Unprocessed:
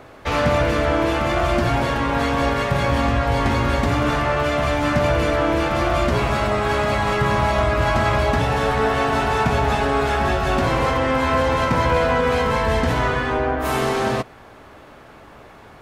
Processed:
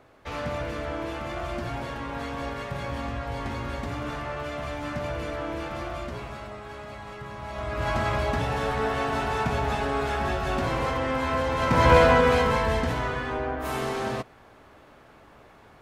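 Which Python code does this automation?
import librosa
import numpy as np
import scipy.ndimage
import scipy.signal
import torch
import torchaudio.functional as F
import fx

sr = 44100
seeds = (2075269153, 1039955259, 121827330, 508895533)

y = fx.gain(x, sr, db=fx.line((5.74, -13.0), (6.64, -20.0), (7.38, -20.0), (7.9, -7.5), (11.55, -7.5), (11.93, 2.5), (13.02, -8.5)))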